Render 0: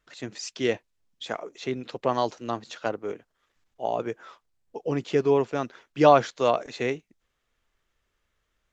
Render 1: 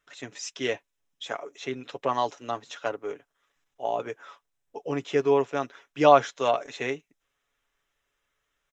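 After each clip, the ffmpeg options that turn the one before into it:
-af "lowshelf=f=310:g=-10,bandreject=f=4.5k:w=5.1,aecho=1:1:7.1:0.45"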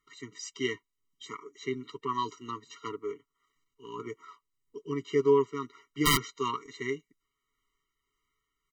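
-af "aeval=exprs='(mod(3.16*val(0)+1,2)-1)/3.16':c=same,tremolo=f=1.7:d=0.31,afftfilt=real='re*eq(mod(floor(b*sr/1024/460),2),0)':imag='im*eq(mod(floor(b*sr/1024/460),2),0)':win_size=1024:overlap=0.75"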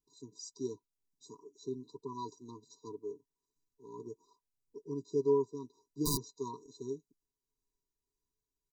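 -af "asuperstop=centerf=2000:order=20:qfactor=0.66,volume=-5.5dB"

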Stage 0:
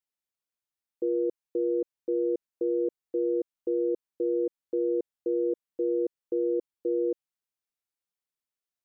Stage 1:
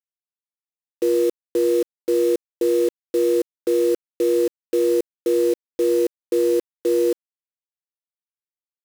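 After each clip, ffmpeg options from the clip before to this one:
-af "acrusher=bits=6:mix=0:aa=0.000001,volume=8.5dB"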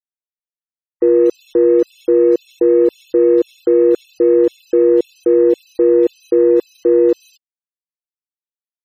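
-filter_complex "[0:a]acrossover=split=2400[a][b];[b]adelay=240[c];[a][c]amix=inputs=2:normalize=0,acrossover=split=3000[d][e];[e]acompressor=threshold=-45dB:ratio=4:attack=1:release=60[f];[d][f]amix=inputs=2:normalize=0,afftfilt=real='re*gte(hypot(re,im),0.00794)':imag='im*gte(hypot(re,im),0.00794)':win_size=1024:overlap=0.75,volume=7.5dB"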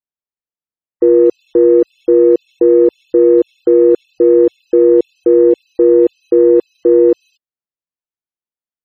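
-af "lowpass=f=1k:p=1,volume=3.5dB"

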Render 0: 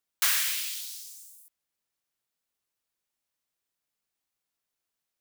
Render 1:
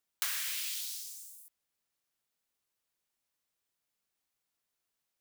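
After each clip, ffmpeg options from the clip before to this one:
-af "acompressor=threshold=-32dB:ratio=6"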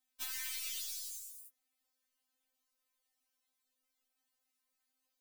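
-af "acompressor=threshold=-38dB:ratio=5,aeval=exprs='(tanh(15.8*val(0)+0.3)-tanh(0.3))/15.8':c=same,afftfilt=real='re*3.46*eq(mod(b,12),0)':imag='im*3.46*eq(mod(b,12),0)':win_size=2048:overlap=0.75,volume=3.5dB"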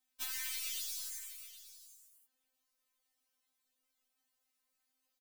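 -af "aecho=1:1:771:0.188,volume=1dB"

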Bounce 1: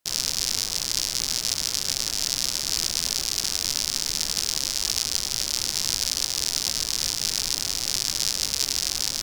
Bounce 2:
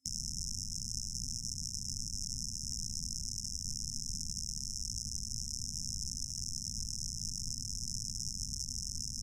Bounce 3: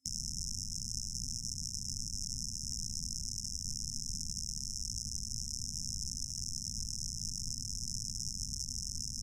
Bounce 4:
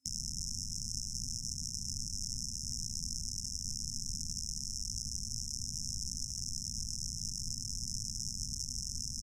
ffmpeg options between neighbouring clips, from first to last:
-filter_complex "[0:a]afftfilt=real='re*(1-between(b*sr/4096,260,5200))':imag='im*(1-between(b*sr/4096,260,5200))':win_size=4096:overlap=0.75,lowpass=7.4k,acrossover=split=200[a][b];[b]acompressor=threshold=-38dB:ratio=3[c];[a][c]amix=inputs=2:normalize=0"
-af anull
-af "aecho=1:1:361:0.251"

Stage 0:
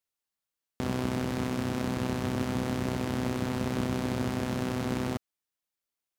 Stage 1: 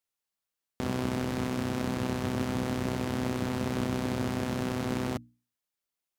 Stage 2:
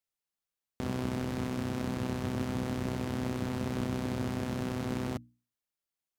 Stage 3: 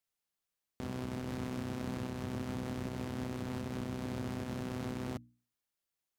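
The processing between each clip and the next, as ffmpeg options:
-af "bandreject=f=60:t=h:w=6,bandreject=f=120:t=h:w=6,bandreject=f=180:t=h:w=6,bandreject=f=240:t=h:w=6,bandreject=f=300:t=h:w=6"
-af "lowshelf=f=230:g=4,volume=-4.5dB"
-af "alimiter=level_in=5.5dB:limit=-24dB:level=0:latency=1:release=342,volume=-5.5dB,volume=1.5dB"

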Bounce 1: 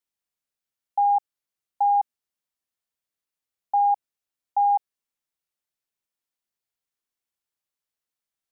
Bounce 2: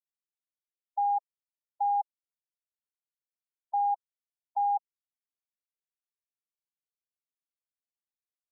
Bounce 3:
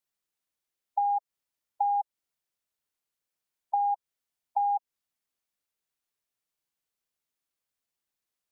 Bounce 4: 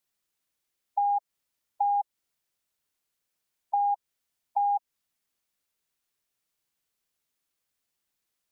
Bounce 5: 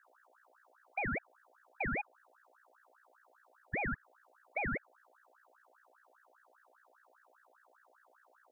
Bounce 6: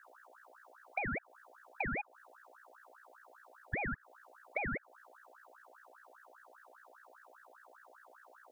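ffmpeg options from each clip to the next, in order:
-af "afftfilt=real='re*gte(hypot(re,im),0.141)':imag='im*gte(hypot(re,im),0.141)':win_size=1024:overlap=0.75,volume=-7dB"
-af "acompressor=threshold=-33dB:ratio=6,volume=8dB"
-filter_complex "[0:a]equalizer=f=750:w=0.66:g=-2,asplit=2[a][b];[b]alimiter=level_in=7dB:limit=-24dB:level=0:latency=1:release=25,volume=-7dB,volume=-1dB[c];[a][c]amix=inputs=2:normalize=0"
-af "equalizer=f=790:t=o:w=2.1:g=-6,aeval=exprs='val(0)+0.000794*(sin(2*PI*60*n/s)+sin(2*PI*2*60*n/s)/2+sin(2*PI*3*60*n/s)/3+sin(2*PI*4*60*n/s)/4+sin(2*PI*5*60*n/s)/5)':c=same,aeval=exprs='val(0)*sin(2*PI*1100*n/s+1100*0.5/5*sin(2*PI*5*n/s))':c=same,volume=-1.5dB"
-af "acompressor=threshold=-42dB:ratio=6,volume=7.5dB"

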